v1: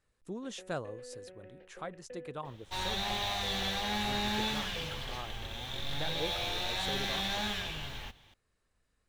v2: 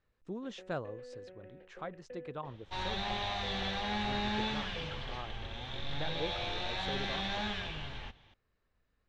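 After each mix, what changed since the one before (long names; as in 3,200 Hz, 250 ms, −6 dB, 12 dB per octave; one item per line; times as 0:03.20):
master: add high-frequency loss of the air 160 metres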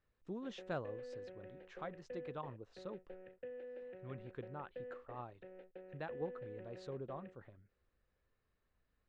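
speech −3.5 dB
second sound: muted
master: add high-shelf EQ 8,700 Hz −9.5 dB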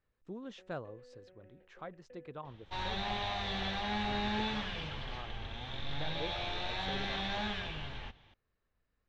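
first sound −8.5 dB
second sound: unmuted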